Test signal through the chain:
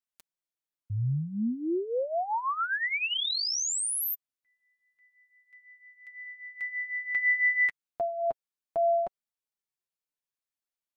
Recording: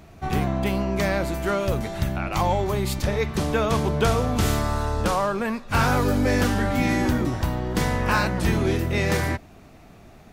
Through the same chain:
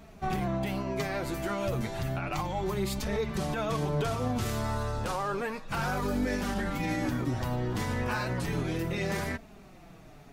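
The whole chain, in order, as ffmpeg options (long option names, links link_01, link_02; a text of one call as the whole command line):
ffmpeg -i in.wav -af "alimiter=limit=-19dB:level=0:latency=1:release=72,flanger=delay=4.4:depth=4.7:regen=8:speed=0.32:shape=triangular" out.wav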